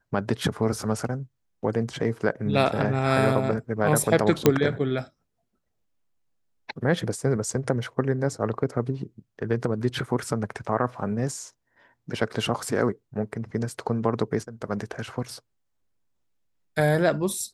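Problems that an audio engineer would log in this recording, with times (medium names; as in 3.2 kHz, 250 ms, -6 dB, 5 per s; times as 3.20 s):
4.46 s: pop -3 dBFS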